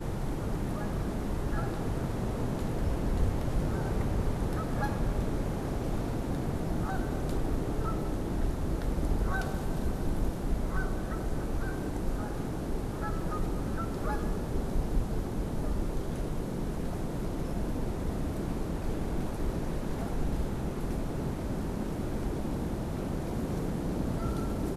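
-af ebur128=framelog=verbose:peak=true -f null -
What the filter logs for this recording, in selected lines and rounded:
Integrated loudness:
  I:         -33.8 LUFS
  Threshold: -43.8 LUFS
Loudness range:
  LRA:         2.5 LU
  Threshold: -53.8 LUFS
  LRA low:   -34.9 LUFS
  LRA high:  -32.4 LUFS
True peak:
  Peak:      -15.6 dBFS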